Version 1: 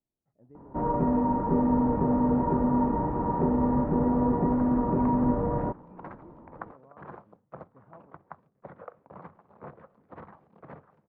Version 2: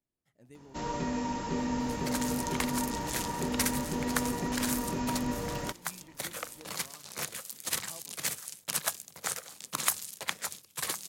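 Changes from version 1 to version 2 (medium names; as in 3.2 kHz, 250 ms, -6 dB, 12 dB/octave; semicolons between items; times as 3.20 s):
first sound -8.5 dB; second sound: entry -2.45 s; master: remove low-pass 1.1 kHz 24 dB/octave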